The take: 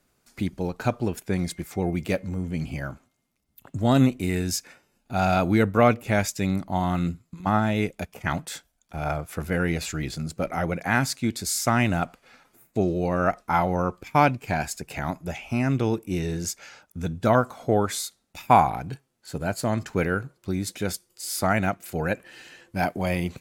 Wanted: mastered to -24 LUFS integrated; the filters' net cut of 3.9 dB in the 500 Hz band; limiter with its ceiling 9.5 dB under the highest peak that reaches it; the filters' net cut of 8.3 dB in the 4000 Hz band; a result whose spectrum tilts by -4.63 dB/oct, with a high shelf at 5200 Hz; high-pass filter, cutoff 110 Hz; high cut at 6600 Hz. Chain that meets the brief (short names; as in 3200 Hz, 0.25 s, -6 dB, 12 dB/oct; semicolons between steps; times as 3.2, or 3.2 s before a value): HPF 110 Hz; LPF 6600 Hz; bell 500 Hz -5 dB; bell 4000 Hz -8 dB; high shelf 5200 Hz -4 dB; gain +6 dB; limiter -9 dBFS